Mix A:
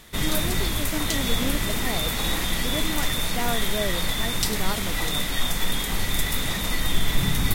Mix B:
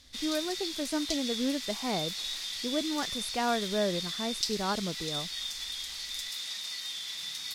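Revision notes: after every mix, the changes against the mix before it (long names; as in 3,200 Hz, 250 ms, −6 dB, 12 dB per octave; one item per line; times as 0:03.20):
background: add resonant band-pass 4,800 Hz, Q 2.8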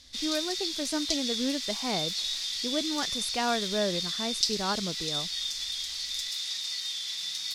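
background −3.5 dB
master: add parametric band 5,000 Hz +9 dB 1.7 octaves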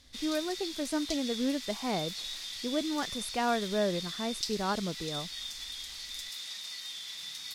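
master: add parametric band 5,000 Hz −9 dB 1.7 octaves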